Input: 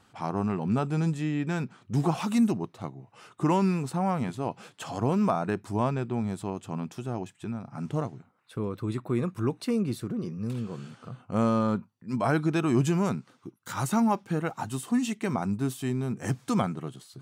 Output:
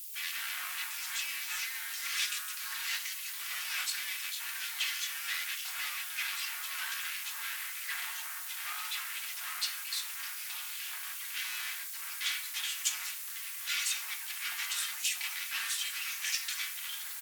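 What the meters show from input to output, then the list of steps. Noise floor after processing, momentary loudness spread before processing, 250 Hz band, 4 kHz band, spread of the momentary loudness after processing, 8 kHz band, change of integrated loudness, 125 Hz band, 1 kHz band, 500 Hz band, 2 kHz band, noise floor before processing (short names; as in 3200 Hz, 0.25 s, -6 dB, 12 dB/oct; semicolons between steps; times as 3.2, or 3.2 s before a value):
-41 dBFS, 12 LU, under -40 dB, +11.5 dB, 5 LU, +9.5 dB, -5.0 dB, under -40 dB, -14.0 dB, -36.5 dB, +5.5 dB, -63 dBFS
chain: minimum comb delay 3.5 ms; low-pass opened by the level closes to 2900 Hz, open at -23 dBFS; in parallel at -4.5 dB: overloaded stage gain 20.5 dB; on the sum: sample leveller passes 1; compressor 20:1, threshold -26 dBFS, peak gain reduction 11.5 dB; sample leveller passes 2; added noise violet -45 dBFS; inverse Chebyshev high-pass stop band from 660 Hz, stop band 60 dB; on a send: feedback echo 66 ms, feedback 27%, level -19.5 dB; on the sum: shoebox room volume 31 m³, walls mixed, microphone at 0.32 m; echoes that change speed 0.13 s, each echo -4 st, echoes 2; SBC 128 kbps 48000 Hz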